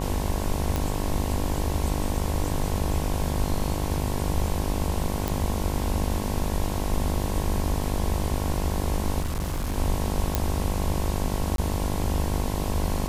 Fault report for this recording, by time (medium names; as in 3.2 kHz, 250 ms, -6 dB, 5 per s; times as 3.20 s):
buzz 50 Hz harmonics 22 -30 dBFS
0.76 s: pop
5.28 s: pop
9.20–9.77 s: clipped -23.5 dBFS
10.35 s: pop -6 dBFS
11.56–11.58 s: dropout 22 ms